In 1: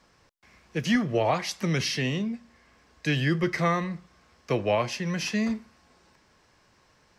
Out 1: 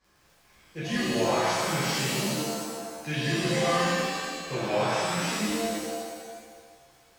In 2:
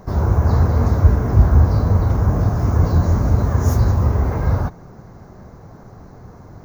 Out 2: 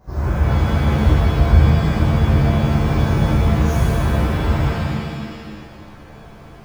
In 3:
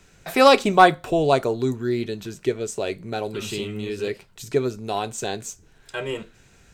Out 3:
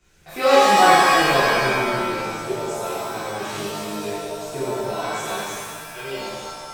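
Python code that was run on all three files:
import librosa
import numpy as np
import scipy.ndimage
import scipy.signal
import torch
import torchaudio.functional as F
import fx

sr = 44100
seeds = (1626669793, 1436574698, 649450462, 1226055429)

y = fx.dmg_crackle(x, sr, seeds[0], per_s=25.0, level_db=-38.0)
y = fx.rev_shimmer(y, sr, seeds[1], rt60_s=1.6, semitones=7, shimmer_db=-2, drr_db=-11.0)
y = y * 10.0 ** (-13.5 / 20.0)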